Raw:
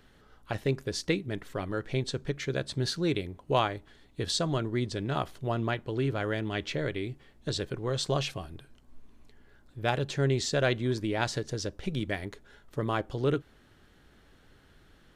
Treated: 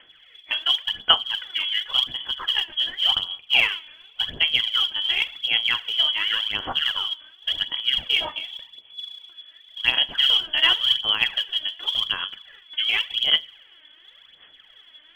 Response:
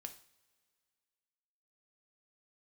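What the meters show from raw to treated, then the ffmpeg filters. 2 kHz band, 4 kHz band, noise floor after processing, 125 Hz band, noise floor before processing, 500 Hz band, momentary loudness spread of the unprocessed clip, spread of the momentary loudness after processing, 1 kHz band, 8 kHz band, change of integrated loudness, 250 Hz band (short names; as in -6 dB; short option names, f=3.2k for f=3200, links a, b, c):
+11.5 dB, +20.5 dB, -53 dBFS, under -15 dB, -60 dBFS, -12.5 dB, 9 LU, 13 LU, +1.5 dB, n/a, +10.5 dB, -16.0 dB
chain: -filter_complex "[0:a]asplit=2[a][b];[1:a]atrim=start_sample=2205[c];[b][c]afir=irnorm=-1:irlink=0,volume=6dB[d];[a][d]amix=inputs=2:normalize=0,lowpass=f=2.9k:t=q:w=0.5098,lowpass=f=2.9k:t=q:w=0.6013,lowpass=f=2.9k:t=q:w=0.9,lowpass=f=2.9k:t=q:w=2.563,afreqshift=-3400,aphaser=in_gain=1:out_gain=1:delay=3.3:decay=0.63:speed=0.9:type=sinusoidal,volume=-1.5dB"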